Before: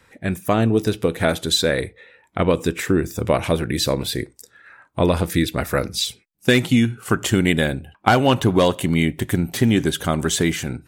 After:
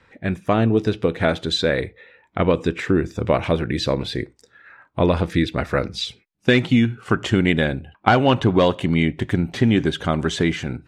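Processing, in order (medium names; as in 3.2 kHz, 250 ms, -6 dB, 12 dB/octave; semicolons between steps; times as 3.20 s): low-pass 3.9 kHz 12 dB/octave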